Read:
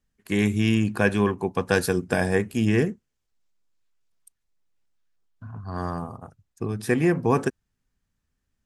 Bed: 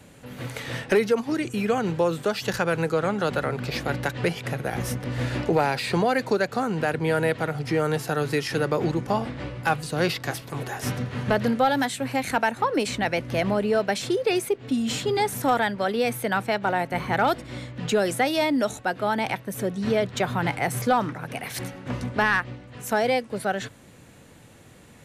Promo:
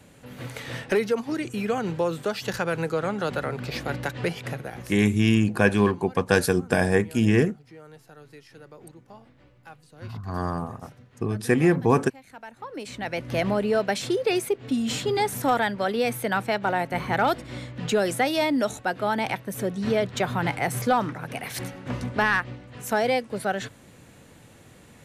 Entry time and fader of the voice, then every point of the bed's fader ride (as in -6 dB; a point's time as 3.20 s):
4.60 s, +1.5 dB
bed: 4.51 s -2.5 dB
5.24 s -23 dB
12.26 s -23 dB
13.33 s -0.5 dB